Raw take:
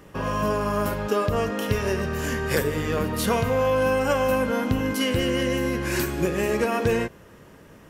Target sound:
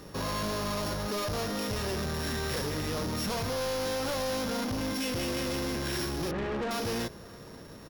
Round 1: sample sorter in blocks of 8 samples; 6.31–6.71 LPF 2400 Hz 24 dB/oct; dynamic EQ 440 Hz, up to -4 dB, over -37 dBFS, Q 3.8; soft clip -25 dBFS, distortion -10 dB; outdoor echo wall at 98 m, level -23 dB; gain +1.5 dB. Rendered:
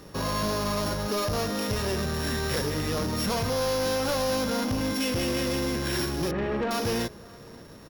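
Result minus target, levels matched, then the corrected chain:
soft clip: distortion -4 dB
sample sorter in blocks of 8 samples; 6.31–6.71 LPF 2400 Hz 24 dB/oct; dynamic EQ 440 Hz, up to -4 dB, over -37 dBFS, Q 3.8; soft clip -31.5 dBFS, distortion -6 dB; outdoor echo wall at 98 m, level -23 dB; gain +1.5 dB

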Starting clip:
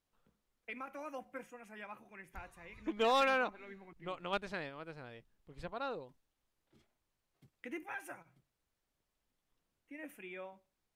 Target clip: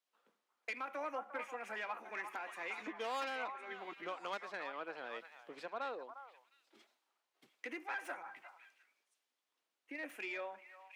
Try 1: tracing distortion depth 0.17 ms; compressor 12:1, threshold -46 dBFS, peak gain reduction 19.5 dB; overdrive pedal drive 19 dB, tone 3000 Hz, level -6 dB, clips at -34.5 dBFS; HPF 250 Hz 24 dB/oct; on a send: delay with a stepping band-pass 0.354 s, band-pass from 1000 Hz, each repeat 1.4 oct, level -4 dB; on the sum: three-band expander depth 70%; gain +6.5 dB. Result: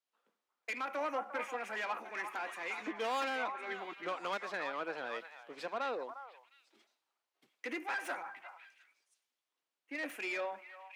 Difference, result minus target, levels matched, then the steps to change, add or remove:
compressor: peak gain reduction -8 dB
change: compressor 12:1, threshold -54.5 dBFS, peak gain reduction 27.5 dB

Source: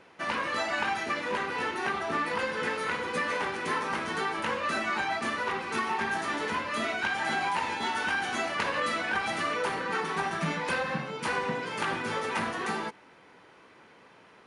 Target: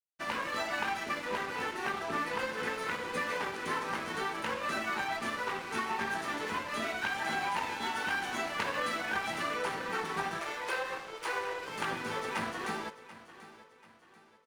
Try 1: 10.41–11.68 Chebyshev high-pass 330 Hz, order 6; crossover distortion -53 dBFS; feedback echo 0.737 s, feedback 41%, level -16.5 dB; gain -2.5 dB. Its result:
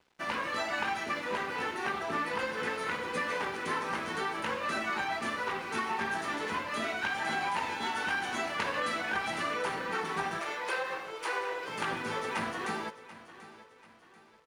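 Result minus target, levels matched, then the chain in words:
crossover distortion: distortion -10 dB
10.41–11.68 Chebyshev high-pass 330 Hz, order 6; crossover distortion -43 dBFS; feedback echo 0.737 s, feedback 41%, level -16.5 dB; gain -2.5 dB

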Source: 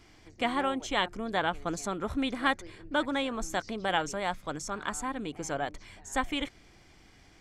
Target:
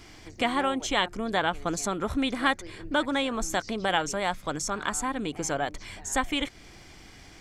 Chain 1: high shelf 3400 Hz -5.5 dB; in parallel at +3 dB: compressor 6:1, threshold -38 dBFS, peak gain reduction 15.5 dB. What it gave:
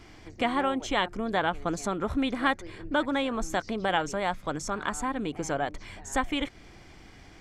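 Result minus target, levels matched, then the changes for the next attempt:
8000 Hz band -5.5 dB
change: high shelf 3400 Hz +3.5 dB

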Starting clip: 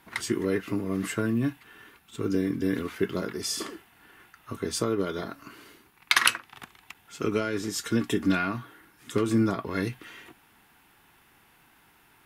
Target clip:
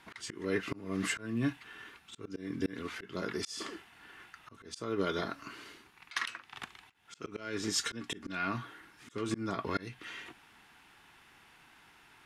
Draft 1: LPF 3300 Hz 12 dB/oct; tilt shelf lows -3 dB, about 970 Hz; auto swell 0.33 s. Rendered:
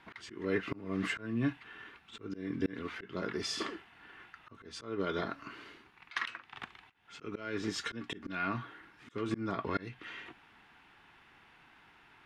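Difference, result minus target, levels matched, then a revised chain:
8000 Hz band -7.5 dB
LPF 7200 Hz 12 dB/oct; tilt shelf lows -3 dB, about 970 Hz; auto swell 0.33 s

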